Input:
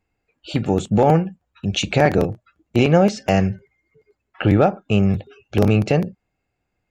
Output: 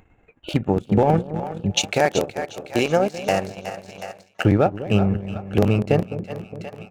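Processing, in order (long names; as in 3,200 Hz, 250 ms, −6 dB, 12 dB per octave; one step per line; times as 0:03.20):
adaptive Wiener filter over 9 samples
echo with a time of its own for lows and highs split 580 Hz, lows 206 ms, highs 368 ms, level −8 dB
transient designer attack +4 dB, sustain −12 dB
noise gate with hold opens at −30 dBFS
upward compression, threshold −22 dBFS
0:01.77–0:04.45: bass and treble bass −11 dB, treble +9 dB
level −3 dB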